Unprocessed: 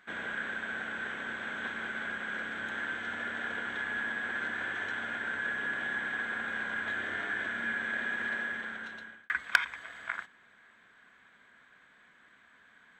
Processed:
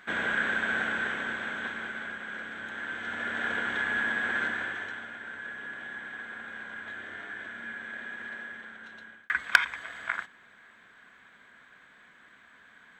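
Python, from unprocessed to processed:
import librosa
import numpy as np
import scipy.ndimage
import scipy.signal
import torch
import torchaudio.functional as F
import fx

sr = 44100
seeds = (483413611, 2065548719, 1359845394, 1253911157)

y = fx.gain(x, sr, db=fx.line((0.82, 8.0), (2.19, -2.0), (2.74, -2.0), (3.48, 5.5), (4.42, 5.5), (5.12, -6.0), (8.77, -6.0), (9.4, 4.5)))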